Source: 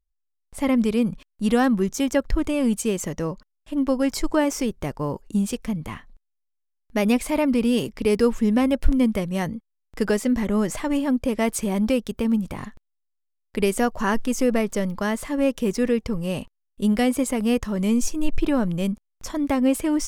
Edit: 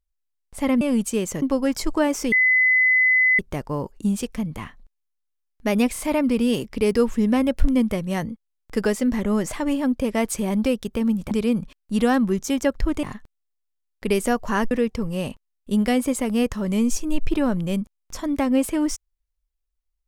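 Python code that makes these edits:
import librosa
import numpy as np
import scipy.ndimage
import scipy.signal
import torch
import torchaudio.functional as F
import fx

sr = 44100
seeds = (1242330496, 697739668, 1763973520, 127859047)

y = fx.edit(x, sr, fx.move(start_s=0.81, length_s=1.72, to_s=12.55),
    fx.cut(start_s=3.14, length_s=0.65),
    fx.insert_tone(at_s=4.69, length_s=1.07, hz=2020.0, db=-14.0),
    fx.stutter(start_s=7.23, slice_s=0.03, count=3),
    fx.cut(start_s=14.23, length_s=1.59), tone=tone)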